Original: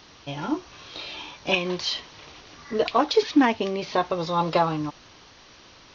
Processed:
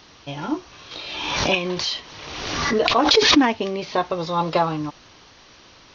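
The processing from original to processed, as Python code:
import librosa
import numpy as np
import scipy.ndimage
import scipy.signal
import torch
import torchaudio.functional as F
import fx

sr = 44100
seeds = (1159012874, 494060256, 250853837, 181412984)

y = fx.pre_swell(x, sr, db_per_s=35.0, at=(0.91, 3.45))
y = y * librosa.db_to_amplitude(1.5)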